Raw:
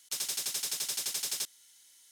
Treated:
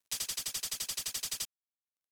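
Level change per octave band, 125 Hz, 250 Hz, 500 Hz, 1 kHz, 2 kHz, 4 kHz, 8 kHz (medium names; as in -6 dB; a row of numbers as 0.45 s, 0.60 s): +3.0 dB, -1.5 dB, -5.0 dB, -1.5 dB, -1.5 dB, -2.0 dB, -3.0 dB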